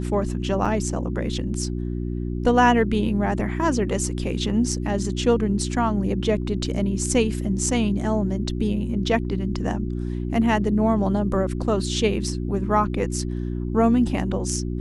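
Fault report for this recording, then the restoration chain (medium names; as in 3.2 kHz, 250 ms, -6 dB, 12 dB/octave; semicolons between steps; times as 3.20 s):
hum 60 Hz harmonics 6 -27 dBFS
0.65 s: dropout 4.4 ms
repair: de-hum 60 Hz, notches 6; interpolate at 0.65 s, 4.4 ms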